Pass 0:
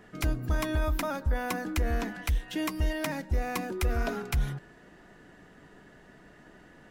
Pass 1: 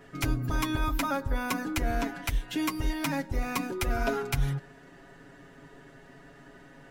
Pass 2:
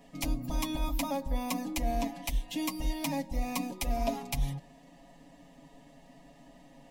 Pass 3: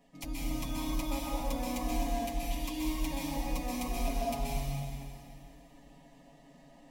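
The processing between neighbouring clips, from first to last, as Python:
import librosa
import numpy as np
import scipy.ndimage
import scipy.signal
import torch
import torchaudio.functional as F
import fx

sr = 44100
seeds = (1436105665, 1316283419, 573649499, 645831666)

y1 = x + 0.88 * np.pad(x, (int(7.3 * sr / 1000.0), 0))[:len(x)]
y2 = fx.fixed_phaser(y1, sr, hz=390.0, stages=6)
y3 = fx.rev_plate(y2, sr, seeds[0], rt60_s=2.5, hf_ratio=0.95, predelay_ms=115, drr_db=-6.0)
y3 = y3 * 10.0 ** (-8.5 / 20.0)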